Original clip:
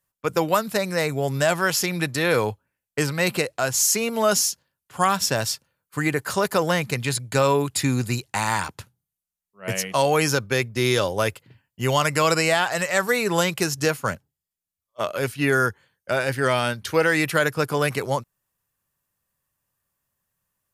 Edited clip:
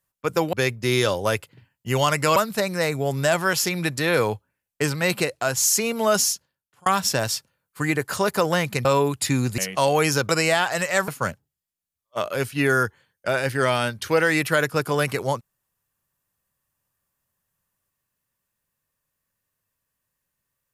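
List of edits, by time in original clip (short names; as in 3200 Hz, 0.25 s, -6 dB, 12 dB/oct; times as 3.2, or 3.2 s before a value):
4.47–5.03 fade out
7.02–7.39 cut
8.12–9.75 cut
10.46–12.29 move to 0.53
13.08–13.91 cut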